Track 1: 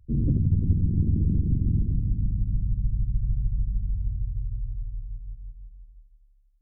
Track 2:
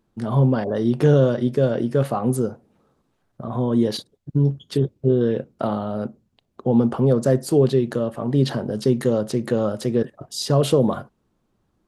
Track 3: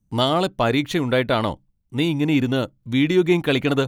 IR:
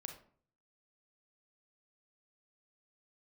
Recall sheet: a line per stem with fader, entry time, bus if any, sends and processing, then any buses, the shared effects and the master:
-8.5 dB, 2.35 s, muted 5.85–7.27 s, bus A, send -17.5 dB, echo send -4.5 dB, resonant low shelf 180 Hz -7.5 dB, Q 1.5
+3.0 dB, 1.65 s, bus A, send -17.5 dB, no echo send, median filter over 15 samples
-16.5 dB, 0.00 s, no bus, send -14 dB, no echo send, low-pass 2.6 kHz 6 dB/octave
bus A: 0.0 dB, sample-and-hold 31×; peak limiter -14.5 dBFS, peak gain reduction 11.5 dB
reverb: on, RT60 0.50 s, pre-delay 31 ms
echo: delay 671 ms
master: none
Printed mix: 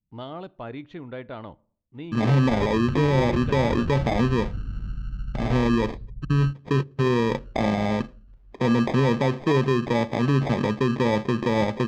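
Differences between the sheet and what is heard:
stem 1: missing resonant low shelf 180 Hz -7.5 dB, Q 1.5; stem 2: entry 1.65 s -> 1.95 s; master: extra distance through air 170 m

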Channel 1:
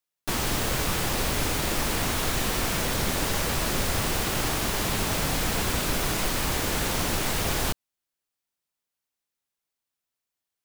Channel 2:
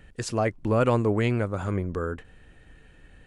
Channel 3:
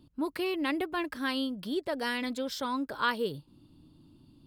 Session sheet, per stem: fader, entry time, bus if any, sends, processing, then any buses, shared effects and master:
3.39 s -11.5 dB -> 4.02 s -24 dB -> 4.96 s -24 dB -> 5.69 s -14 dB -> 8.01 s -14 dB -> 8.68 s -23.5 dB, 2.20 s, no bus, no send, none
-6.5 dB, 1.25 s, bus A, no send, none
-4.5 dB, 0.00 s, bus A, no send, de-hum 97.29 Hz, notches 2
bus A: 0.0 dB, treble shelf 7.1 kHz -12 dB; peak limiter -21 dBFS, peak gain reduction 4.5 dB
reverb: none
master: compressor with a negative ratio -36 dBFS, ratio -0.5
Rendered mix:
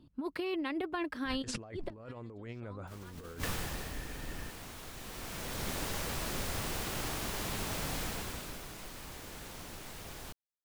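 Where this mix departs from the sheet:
stem 1: entry 2.20 s -> 2.60 s; stem 2 -6.5 dB -> +5.0 dB

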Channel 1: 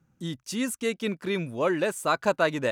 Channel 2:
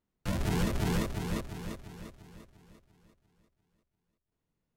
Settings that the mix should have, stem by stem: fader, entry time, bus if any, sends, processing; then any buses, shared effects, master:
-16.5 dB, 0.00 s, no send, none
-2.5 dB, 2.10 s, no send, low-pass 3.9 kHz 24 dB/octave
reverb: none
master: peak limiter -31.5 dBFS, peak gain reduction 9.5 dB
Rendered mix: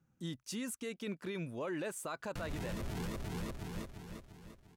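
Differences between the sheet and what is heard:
stem 1 -16.5 dB -> -7.5 dB; stem 2: missing low-pass 3.9 kHz 24 dB/octave

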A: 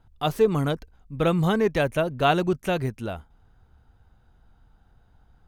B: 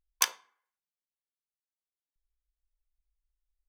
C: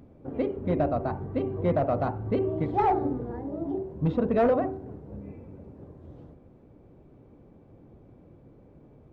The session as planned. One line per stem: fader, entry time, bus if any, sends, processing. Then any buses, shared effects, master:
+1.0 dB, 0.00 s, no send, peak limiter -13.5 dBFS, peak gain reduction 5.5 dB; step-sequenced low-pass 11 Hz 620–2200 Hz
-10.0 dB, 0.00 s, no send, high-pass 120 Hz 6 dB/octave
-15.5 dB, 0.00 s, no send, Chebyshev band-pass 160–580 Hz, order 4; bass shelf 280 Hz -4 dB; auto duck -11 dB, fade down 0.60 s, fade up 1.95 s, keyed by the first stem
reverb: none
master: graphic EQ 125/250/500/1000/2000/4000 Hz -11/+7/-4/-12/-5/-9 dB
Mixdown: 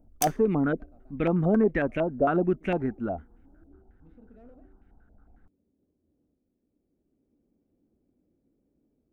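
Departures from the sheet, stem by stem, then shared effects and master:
stem B -10.0 dB -> 0.0 dB; stem C: missing Chebyshev band-pass 160–580 Hz, order 4

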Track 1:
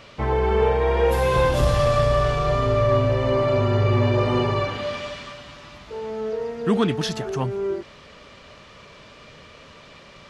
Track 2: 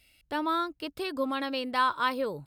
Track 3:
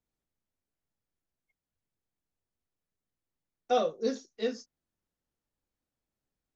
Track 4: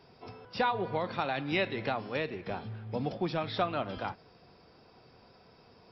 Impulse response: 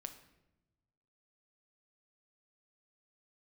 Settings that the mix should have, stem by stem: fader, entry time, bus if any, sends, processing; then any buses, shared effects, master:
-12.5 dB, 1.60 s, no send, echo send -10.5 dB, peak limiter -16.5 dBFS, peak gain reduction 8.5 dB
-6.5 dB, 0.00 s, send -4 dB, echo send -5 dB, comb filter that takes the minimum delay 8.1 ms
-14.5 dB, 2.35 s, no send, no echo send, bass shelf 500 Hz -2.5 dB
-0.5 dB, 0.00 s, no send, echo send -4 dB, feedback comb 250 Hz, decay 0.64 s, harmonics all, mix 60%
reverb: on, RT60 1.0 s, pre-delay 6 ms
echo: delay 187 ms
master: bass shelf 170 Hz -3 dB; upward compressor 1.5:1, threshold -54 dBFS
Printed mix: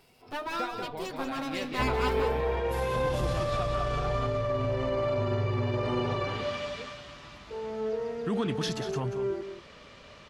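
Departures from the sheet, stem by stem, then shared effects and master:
stem 1 -12.5 dB -> -5.0 dB; master: missing bass shelf 170 Hz -3 dB

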